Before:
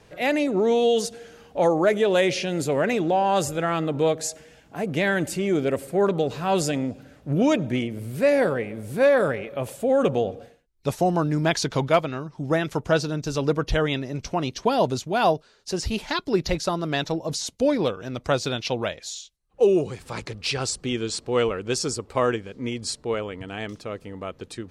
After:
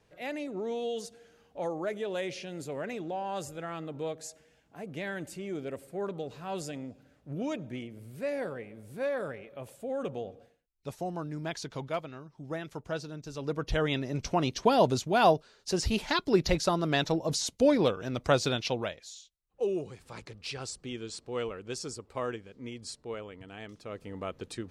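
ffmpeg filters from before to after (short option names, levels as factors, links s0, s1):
-af "volume=2.11,afade=t=in:st=13.36:d=0.85:silence=0.251189,afade=t=out:st=18.48:d=0.59:silence=0.316228,afade=t=in:st=23.76:d=0.4:silence=0.375837"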